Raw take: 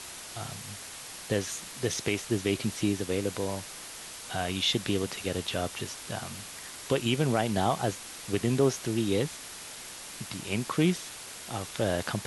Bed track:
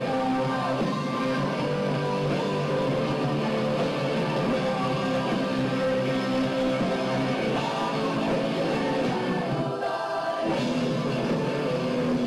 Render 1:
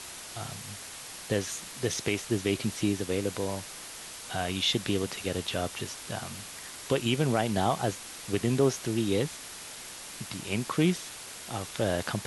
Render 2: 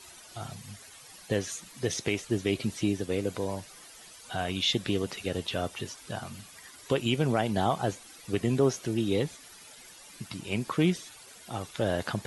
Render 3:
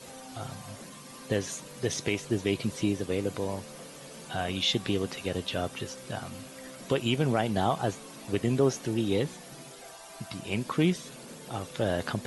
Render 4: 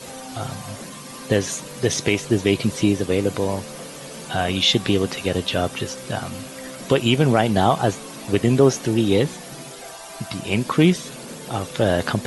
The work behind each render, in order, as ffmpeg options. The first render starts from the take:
-af anull
-af "afftdn=nr=12:nf=-43"
-filter_complex "[1:a]volume=0.0841[s0];[0:a][s0]amix=inputs=2:normalize=0"
-af "volume=2.99"

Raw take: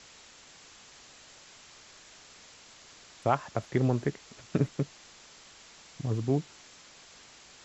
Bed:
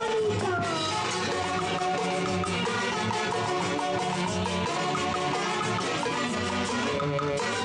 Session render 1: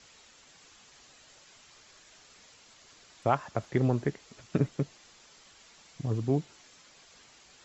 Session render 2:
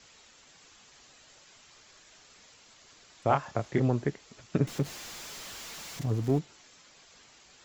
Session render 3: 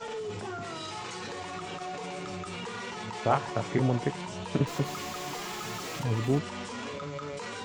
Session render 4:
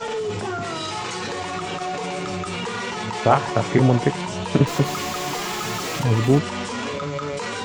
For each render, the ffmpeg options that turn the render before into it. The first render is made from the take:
-af "afftdn=nr=6:nf=-54"
-filter_complex "[0:a]asettb=1/sr,asplit=3[s0][s1][s2];[s0]atrim=end=3.274[s3];[s1]atrim=start=3.27:end=3.8,asetpts=PTS-STARTPTS,afade=t=in:d=0.004:c=qsin,afade=t=out:st=0.526:d=0.004:c=qsin,asplit=2[s4][s5];[s5]adelay=28,volume=0.596[s6];[s4][s6]amix=inputs=2:normalize=0,atrim=end_sample=23373[s7];[s2]atrim=start=3.796[s8];[s3][s7]acrossfade=d=0.004:c1=hsin:c2=qsin[s9];[s9][s8]acrossfade=d=0.004:c1=qsin:c2=hsin,asettb=1/sr,asplit=3[s10][s11][s12];[s10]atrim=end=4.674[s13];[s11]atrim=start=4.67:end=6.39,asetpts=PTS-STARTPTS,afade=t=in:d=0.004:c=qsin,afade=t=out:st=1.716:d=0.004:c=qsin,aeval=exprs='val(0)+0.5*0.0112*sgn(val(0))':c=same[s14];[s12]atrim=start=6.386[s15];[s13][s14]acrossfade=d=0.004:c1=hsin:c2=qsin[s16];[s16][s15]acrossfade=d=0.004:c1=qsin:c2=hsin"
-filter_complex "[1:a]volume=0.316[s0];[0:a][s0]amix=inputs=2:normalize=0"
-af "volume=3.16,alimiter=limit=0.708:level=0:latency=1"

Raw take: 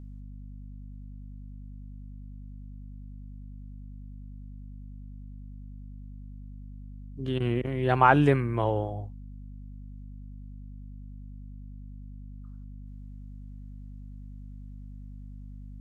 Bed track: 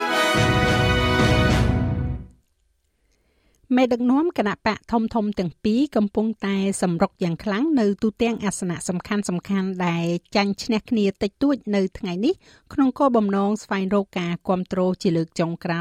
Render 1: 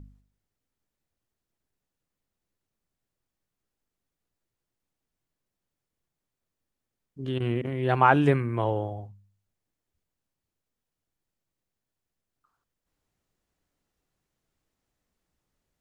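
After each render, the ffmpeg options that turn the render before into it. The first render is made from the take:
-af "bandreject=f=50:t=h:w=4,bandreject=f=100:t=h:w=4,bandreject=f=150:t=h:w=4,bandreject=f=200:t=h:w=4,bandreject=f=250:t=h:w=4"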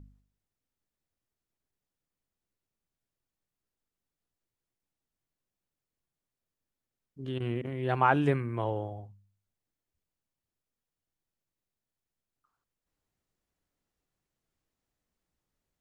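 -af "volume=0.562"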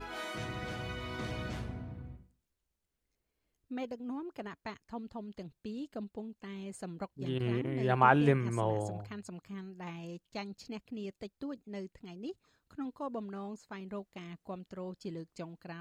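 -filter_complex "[1:a]volume=0.0891[s0];[0:a][s0]amix=inputs=2:normalize=0"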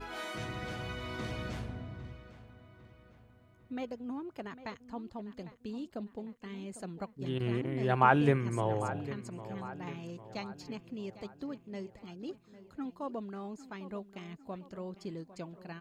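-filter_complex "[0:a]asplit=2[s0][s1];[s1]adelay=802,lowpass=f=3400:p=1,volume=0.188,asplit=2[s2][s3];[s3]adelay=802,lowpass=f=3400:p=1,volume=0.5,asplit=2[s4][s5];[s5]adelay=802,lowpass=f=3400:p=1,volume=0.5,asplit=2[s6][s7];[s7]adelay=802,lowpass=f=3400:p=1,volume=0.5,asplit=2[s8][s9];[s9]adelay=802,lowpass=f=3400:p=1,volume=0.5[s10];[s0][s2][s4][s6][s8][s10]amix=inputs=6:normalize=0"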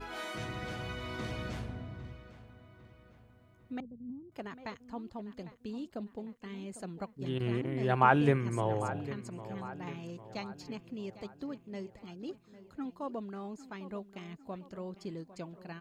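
-filter_complex "[0:a]asettb=1/sr,asplit=3[s0][s1][s2];[s0]atrim=end=3.804[s3];[s1]atrim=start=3.8:end=4.32,asetpts=PTS-STARTPTS,afade=t=in:d=0.004:c=qsin,afade=t=out:st=0.516:d=0.004:c=qsin,lowpass=f=170:t=q:w=1.7[s4];[s2]atrim=start=4.316[s5];[s3][s4]acrossfade=d=0.004:c1=hsin:c2=qsin[s6];[s6][s5]acrossfade=d=0.004:c1=qsin:c2=hsin"

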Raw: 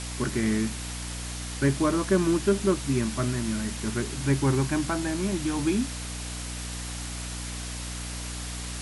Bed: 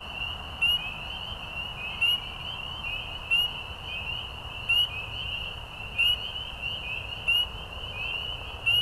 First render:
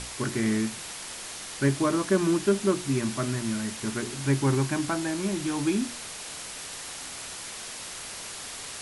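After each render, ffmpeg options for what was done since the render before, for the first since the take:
-af "bandreject=f=60:t=h:w=6,bandreject=f=120:t=h:w=6,bandreject=f=180:t=h:w=6,bandreject=f=240:t=h:w=6,bandreject=f=300:t=h:w=6,bandreject=f=360:t=h:w=6"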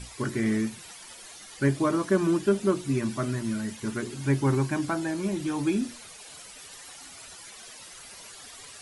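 -af "afftdn=nr=12:nf=-39"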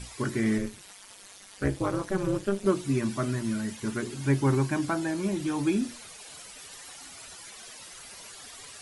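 -filter_complex "[0:a]asettb=1/sr,asplit=3[s0][s1][s2];[s0]atrim=end=0.584[s3];[s1]atrim=start=0.58:end=2.66,asetpts=PTS-STARTPTS,afade=t=in:d=0.004:c=qsin,afade=t=out:st=2.076:d=0.004:c=qsin,tremolo=f=200:d=0.947[s4];[s2]atrim=start=2.656[s5];[s3][s4]acrossfade=d=0.004:c1=hsin:c2=qsin[s6];[s6][s5]acrossfade=d=0.004:c1=qsin:c2=hsin"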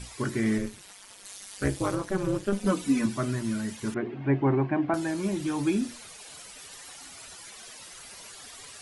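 -filter_complex "[0:a]asettb=1/sr,asplit=3[s0][s1][s2];[s0]atrim=end=1.254[s3];[s1]atrim=start=1.25:end=1.95,asetpts=PTS-STARTPTS,afade=t=in:d=0.004:c=qsin,afade=t=out:st=0.696:d=0.004:c=qsin,highshelf=f=3500:g=8[s4];[s2]atrim=start=1.946[s5];[s3][s4]acrossfade=d=0.004:c1=hsin:c2=qsin[s6];[s6][s5]acrossfade=d=0.004:c1=qsin:c2=hsin,asettb=1/sr,asplit=3[s7][s8][s9];[s7]atrim=end=2.524[s10];[s8]atrim=start=2.52:end=3.06,asetpts=PTS-STARTPTS,afade=t=in:d=0.004:c=qsin,afade=t=out:st=0.536:d=0.004:c=qsin,aecho=1:1:4:0.94,atrim=end_sample=23814[s11];[s9]atrim=start=3.056[s12];[s10][s11]acrossfade=d=0.004:c1=hsin:c2=qsin[s13];[s13][s12]acrossfade=d=0.004:c1=qsin:c2=hsin,asettb=1/sr,asplit=3[s14][s15][s16];[s14]atrim=end=3.944[s17];[s15]atrim=start=3.94:end=4.94,asetpts=PTS-STARTPTS,afade=t=in:d=0.004:c=qsin,afade=t=out:st=0.996:d=0.004:c=qsin,highpass=120,equalizer=f=340:t=q:w=4:g=4,equalizer=f=710:t=q:w=4:g=9,equalizer=f=1400:t=q:w=4:g=-4,lowpass=f=2400:w=0.5412,lowpass=f=2400:w=1.3066[s18];[s16]atrim=start=4.936[s19];[s17][s18]acrossfade=d=0.004:c1=hsin:c2=qsin[s20];[s20][s19]acrossfade=d=0.004:c1=qsin:c2=hsin"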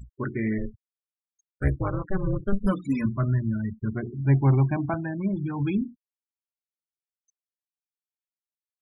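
-af "afftfilt=real='re*gte(hypot(re,im),0.0282)':imag='im*gte(hypot(re,im),0.0282)':win_size=1024:overlap=0.75,asubboost=boost=8:cutoff=120"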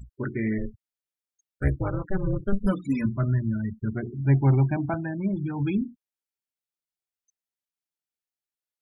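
-af "bandreject=f=1100:w=6.1"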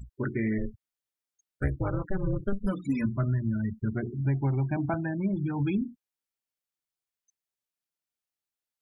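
-af "acompressor=threshold=0.0708:ratio=10"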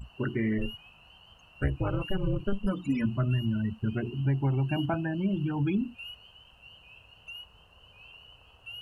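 -filter_complex "[1:a]volume=0.106[s0];[0:a][s0]amix=inputs=2:normalize=0"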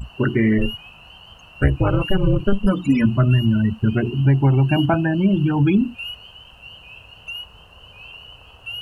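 -af "volume=3.76"

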